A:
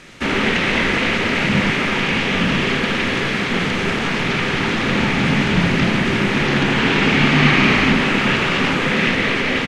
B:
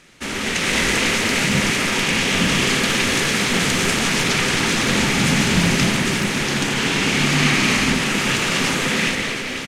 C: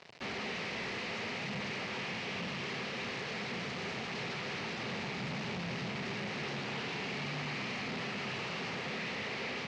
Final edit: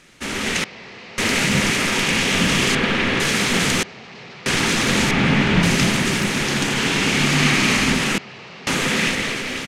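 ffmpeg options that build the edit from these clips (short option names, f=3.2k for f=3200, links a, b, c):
-filter_complex "[2:a]asplit=3[a][b][c];[0:a]asplit=2[d][e];[1:a]asplit=6[f][g][h][i][j][k];[f]atrim=end=0.642[l];[a]atrim=start=0.638:end=1.182[m];[g]atrim=start=1.178:end=2.752[n];[d]atrim=start=2.748:end=3.202[o];[h]atrim=start=3.198:end=3.832[p];[b]atrim=start=3.828:end=4.462[q];[i]atrim=start=4.458:end=5.112[r];[e]atrim=start=5.108:end=5.632[s];[j]atrim=start=5.628:end=8.182[t];[c]atrim=start=8.178:end=8.672[u];[k]atrim=start=8.668[v];[l][m]acrossfade=d=0.004:c1=hsin:c2=hsin[w];[w][n]acrossfade=d=0.004:c1=hsin:c2=hsin[x];[x][o]acrossfade=d=0.004:c1=hsin:c2=hsin[y];[y][p]acrossfade=d=0.004:c1=hsin:c2=hsin[z];[z][q]acrossfade=d=0.004:c1=hsin:c2=hsin[aa];[aa][r]acrossfade=d=0.004:c1=hsin:c2=hsin[ab];[ab][s]acrossfade=d=0.004:c1=hsin:c2=hsin[ac];[ac][t]acrossfade=d=0.004:c1=hsin:c2=hsin[ad];[ad][u]acrossfade=d=0.004:c1=hsin:c2=hsin[ae];[ae][v]acrossfade=d=0.004:c1=hsin:c2=hsin"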